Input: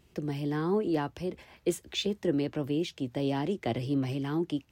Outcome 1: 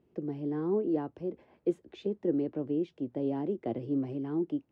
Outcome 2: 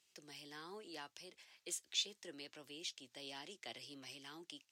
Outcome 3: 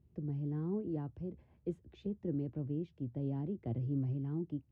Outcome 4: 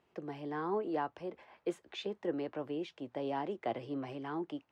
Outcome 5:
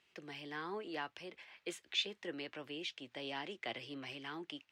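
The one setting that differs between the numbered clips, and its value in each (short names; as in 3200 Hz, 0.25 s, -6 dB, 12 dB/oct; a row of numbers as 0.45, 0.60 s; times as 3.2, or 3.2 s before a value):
band-pass, frequency: 350, 6400, 100, 910, 2400 Hz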